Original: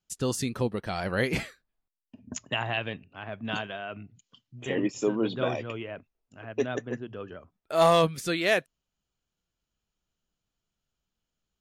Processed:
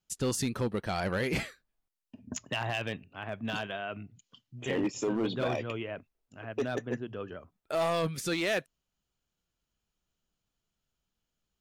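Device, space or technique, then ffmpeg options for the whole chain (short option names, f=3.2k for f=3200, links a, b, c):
limiter into clipper: -af "alimiter=limit=-19.5dB:level=0:latency=1:release=29,asoftclip=type=hard:threshold=-24dB"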